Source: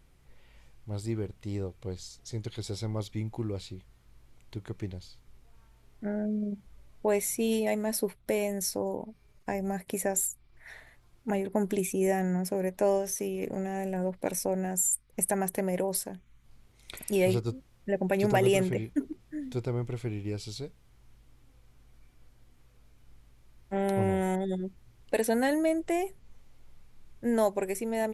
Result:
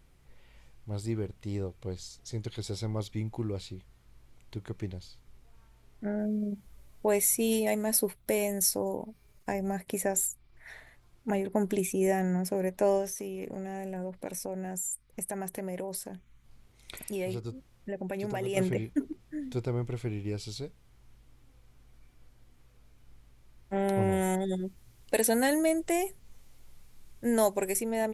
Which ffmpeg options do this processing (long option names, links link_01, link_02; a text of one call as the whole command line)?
ffmpeg -i in.wav -filter_complex "[0:a]asettb=1/sr,asplit=3[link_01][link_02][link_03];[link_01]atrim=end=6.194[link_04];[link_02]atrim=start=6.19:end=9.53,asetpts=PTS-STARTPTS,afade=type=in:duration=0.004:curve=qsin,afade=type=out:start_time=3.336:duration=0.004:curve=qsin,highshelf=frequency=8200:gain=11[link_05];[link_03]atrim=start=9.526[link_06];[link_04][link_05]acrossfade=duration=0.004:curve1=hsin:curve2=qsin[link_07];[link_07][link_06]acrossfade=duration=0.004:curve1=qsin:curve2=hsin,asettb=1/sr,asplit=3[link_08][link_09][link_10];[link_08]atrim=end=13.064[link_11];[link_09]atrim=start=13.06:end=18.57,asetpts=PTS-STARTPTS,afade=type=in:duration=0.004:curve=qsin,afade=type=out:start_time=5.506:duration=0.004:curve=qsin,acompressor=threshold=-37dB:ratio=2:attack=3.2:release=140:knee=1:detection=peak[link_12];[link_10]atrim=start=18.566[link_13];[link_11][link_12]acrossfade=duration=0.004:curve1=hsin:curve2=qsin[link_14];[link_14][link_13]acrossfade=duration=0.004:curve1=qsin:curve2=hsin,asettb=1/sr,asplit=3[link_15][link_16][link_17];[link_15]atrim=end=24.124[link_18];[link_16]atrim=start=24.12:end=27.83,asetpts=PTS-STARTPTS,afade=type=in:duration=0.004:curve=qsin,afade=type=out:start_time=3.706:duration=0.004:curve=qsin,highshelf=frequency=4600:gain=10.5[link_19];[link_17]atrim=start=27.826[link_20];[link_18][link_19]acrossfade=duration=0.004:curve1=hsin:curve2=qsin[link_21];[link_21][link_20]acrossfade=duration=0.004:curve1=qsin:curve2=hsin" out.wav